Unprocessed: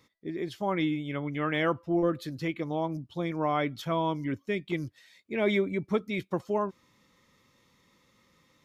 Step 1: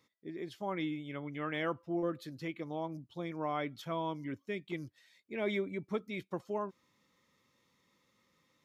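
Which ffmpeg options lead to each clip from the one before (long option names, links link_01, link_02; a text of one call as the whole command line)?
ffmpeg -i in.wav -af "lowshelf=frequency=70:gain=-11,volume=-7.5dB" out.wav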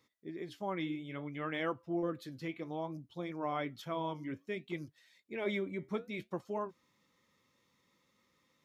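ffmpeg -i in.wav -af "flanger=delay=2.3:depth=9.4:regen=-74:speed=0.6:shape=triangular,volume=3.5dB" out.wav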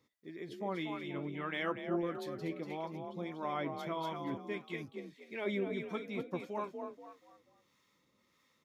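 ffmpeg -i in.wav -filter_complex "[0:a]asplit=5[link_01][link_02][link_03][link_04][link_05];[link_02]adelay=240,afreqshift=38,volume=-6dB[link_06];[link_03]adelay=480,afreqshift=76,volume=-15.1dB[link_07];[link_04]adelay=720,afreqshift=114,volume=-24.2dB[link_08];[link_05]adelay=960,afreqshift=152,volume=-33.4dB[link_09];[link_01][link_06][link_07][link_08][link_09]amix=inputs=5:normalize=0,acrossover=split=760[link_10][link_11];[link_10]aeval=exprs='val(0)*(1-0.5/2+0.5/2*cos(2*PI*1.6*n/s))':channel_layout=same[link_12];[link_11]aeval=exprs='val(0)*(1-0.5/2-0.5/2*cos(2*PI*1.6*n/s))':channel_layout=same[link_13];[link_12][link_13]amix=inputs=2:normalize=0,volume=1.5dB" out.wav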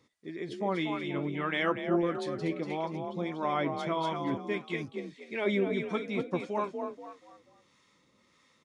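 ffmpeg -i in.wav -af "aresample=22050,aresample=44100,volume=7dB" out.wav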